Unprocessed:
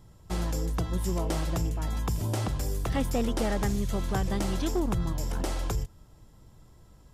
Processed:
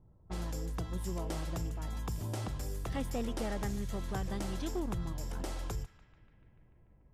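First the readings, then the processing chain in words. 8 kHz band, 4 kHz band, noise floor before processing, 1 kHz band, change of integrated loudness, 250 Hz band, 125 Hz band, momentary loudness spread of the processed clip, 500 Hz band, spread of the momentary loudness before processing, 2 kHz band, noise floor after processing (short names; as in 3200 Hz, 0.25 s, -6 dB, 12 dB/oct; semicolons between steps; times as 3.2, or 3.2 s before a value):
-8.0 dB, -8.0 dB, -55 dBFS, -8.0 dB, -8.0 dB, -8.0 dB, -8.0 dB, 4 LU, -8.0 dB, 4 LU, -7.5 dB, -63 dBFS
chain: low-pass opened by the level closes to 690 Hz, open at -27 dBFS; on a send: narrowing echo 0.146 s, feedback 77%, band-pass 2000 Hz, level -16 dB; on the sum: gain -8 dB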